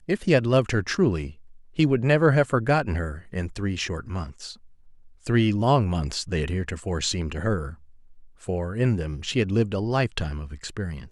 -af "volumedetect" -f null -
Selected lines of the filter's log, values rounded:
mean_volume: -24.7 dB
max_volume: -7.3 dB